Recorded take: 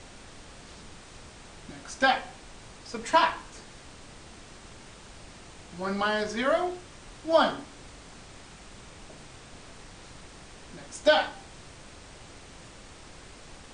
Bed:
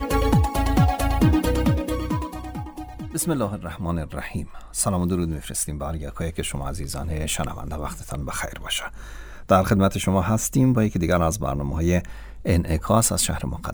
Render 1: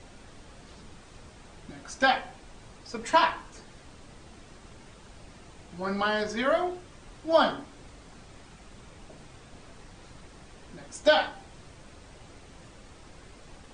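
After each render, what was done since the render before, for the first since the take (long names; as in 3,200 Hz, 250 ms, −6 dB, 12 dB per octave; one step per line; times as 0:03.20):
broadband denoise 6 dB, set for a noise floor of −49 dBFS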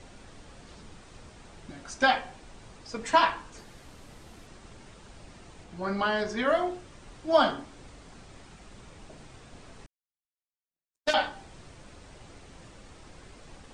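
0:03.58–0:04.47: linear delta modulator 64 kbit/s, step −55 dBFS
0:05.64–0:06.48: high-shelf EQ 4,300 Hz −4 dB
0:09.86–0:11.14: power curve on the samples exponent 3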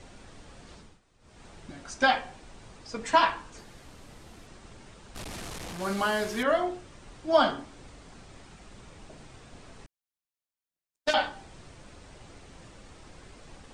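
0:00.74–0:01.45: duck −16.5 dB, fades 0.26 s
0:05.15–0:06.43: linear delta modulator 64 kbit/s, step −33 dBFS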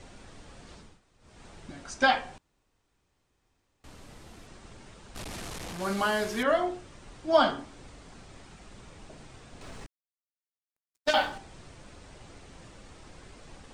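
0:02.38–0:03.84: fill with room tone
0:09.61–0:11.38: mu-law and A-law mismatch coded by mu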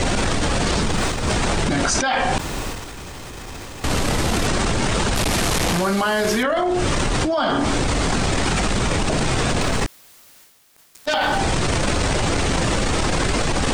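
transient designer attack −8 dB, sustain +8 dB
envelope flattener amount 100%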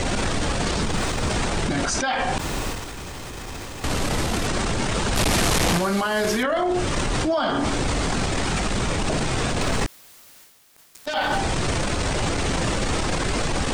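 brickwall limiter −14.5 dBFS, peak gain reduction 8.5 dB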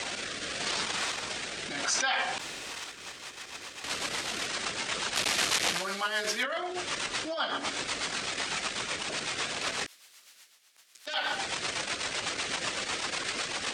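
rotating-speaker cabinet horn 0.85 Hz, later 8 Hz, at 0:02.52
resonant band-pass 3,400 Hz, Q 0.51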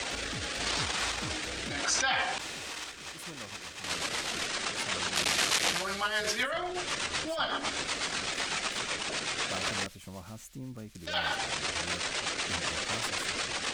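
mix in bed −24 dB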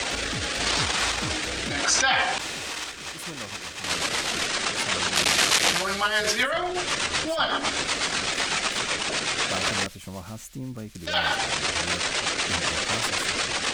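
level +7 dB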